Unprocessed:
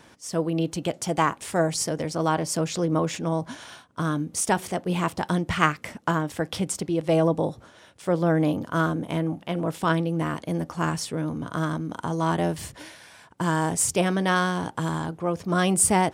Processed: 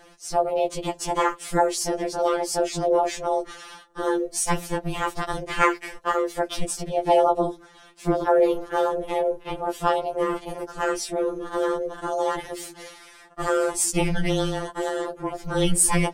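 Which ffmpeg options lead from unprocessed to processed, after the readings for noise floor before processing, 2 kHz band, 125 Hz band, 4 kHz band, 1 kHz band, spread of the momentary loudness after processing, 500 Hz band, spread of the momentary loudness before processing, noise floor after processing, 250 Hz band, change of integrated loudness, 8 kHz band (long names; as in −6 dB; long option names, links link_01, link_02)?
−53 dBFS, −1.0 dB, −6.5 dB, +0.5 dB, +2.0 dB, 11 LU, +4.0 dB, 8 LU, −50 dBFS, −3.5 dB, +1.0 dB, +1.0 dB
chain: -af "aeval=exprs='val(0)*sin(2*PI*200*n/s)':channel_layout=same,afftfilt=real='re*2.83*eq(mod(b,8),0)':imag='im*2.83*eq(mod(b,8),0)':win_size=2048:overlap=0.75,volume=6dB"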